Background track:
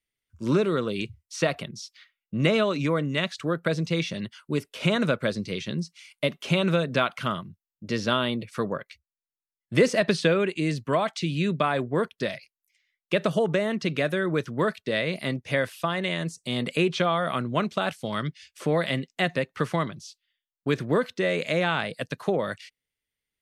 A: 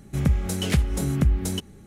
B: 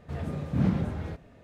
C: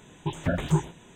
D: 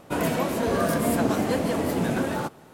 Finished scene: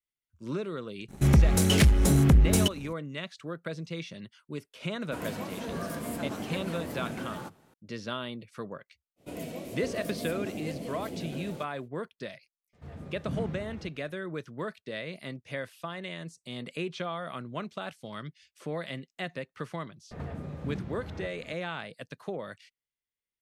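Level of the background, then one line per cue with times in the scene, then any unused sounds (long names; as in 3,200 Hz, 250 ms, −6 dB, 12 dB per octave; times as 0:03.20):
background track −11 dB
0:01.08: mix in A −2.5 dB, fades 0.02 s + leveller curve on the samples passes 2
0:05.01: mix in D −10.5 dB + parametric band 530 Hz −3 dB 2.1 octaves
0:09.16: mix in D −13 dB, fades 0.05 s + flat-topped bell 1,200 Hz −11 dB 1.3 octaves
0:12.73: mix in B −10 dB
0:20.11: mix in B −9.5 dB + multiband upward and downward compressor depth 100%
not used: C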